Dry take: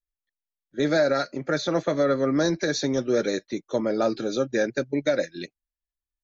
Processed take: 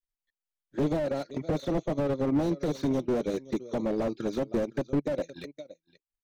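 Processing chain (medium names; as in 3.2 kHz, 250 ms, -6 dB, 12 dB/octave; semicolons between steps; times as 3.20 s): transient shaper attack +7 dB, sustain -11 dB; touch-sensitive flanger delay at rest 8.9 ms, full sweep at -20 dBFS; on a send: delay 515 ms -22.5 dB; on the sum: slew-rate limiter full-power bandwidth 28 Hz; trim -1 dB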